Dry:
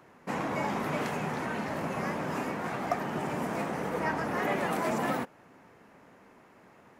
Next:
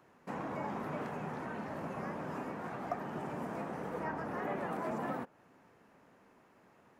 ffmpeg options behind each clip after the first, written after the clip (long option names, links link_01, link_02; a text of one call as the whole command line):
ffmpeg -i in.wav -filter_complex "[0:a]equalizer=frequency=2100:width_type=o:width=0.23:gain=-3,acrossover=split=2000[link_01][link_02];[link_02]acompressor=threshold=-54dB:ratio=6[link_03];[link_01][link_03]amix=inputs=2:normalize=0,volume=-7dB" out.wav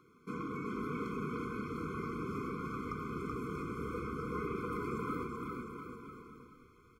ffmpeg -i in.wav -af "aecho=1:1:380|703|977.6|1211|1409:0.631|0.398|0.251|0.158|0.1,asubboost=boost=8.5:cutoff=64,afftfilt=real='re*eq(mod(floor(b*sr/1024/510),2),0)':imag='im*eq(mod(floor(b*sr/1024/510),2),0)':win_size=1024:overlap=0.75,volume=2.5dB" out.wav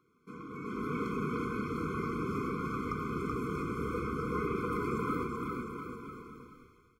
ffmpeg -i in.wav -af "dynaudnorm=framelen=470:gausssize=3:maxgain=12dB,volume=-7.5dB" out.wav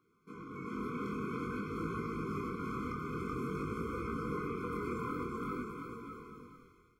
ffmpeg -i in.wav -af "alimiter=level_in=2dB:limit=-24dB:level=0:latency=1:release=299,volume=-2dB,flanger=delay=17.5:depth=7.1:speed=0.5,volume=1dB" out.wav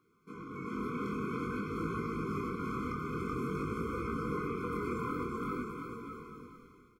ffmpeg -i in.wav -filter_complex "[0:a]asplit=2[link_01][link_02];[link_02]adelay=1224,volume=-25dB,highshelf=frequency=4000:gain=-27.6[link_03];[link_01][link_03]amix=inputs=2:normalize=0,volume=2dB" out.wav